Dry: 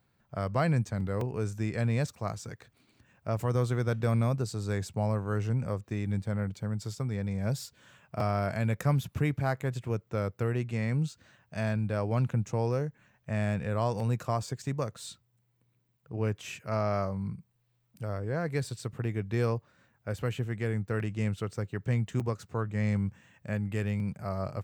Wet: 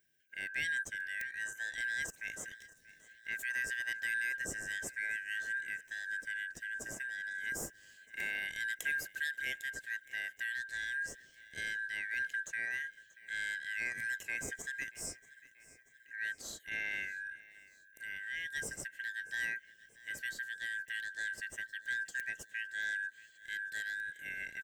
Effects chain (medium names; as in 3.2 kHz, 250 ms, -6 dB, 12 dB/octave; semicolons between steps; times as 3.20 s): four frequency bands reordered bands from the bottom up 4123; high-order bell 2 kHz -13 dB 2.8 oct; on a send: feedback delay 634 ms, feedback 58%, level -20.5 dB; on the sum: trim +3.5 dB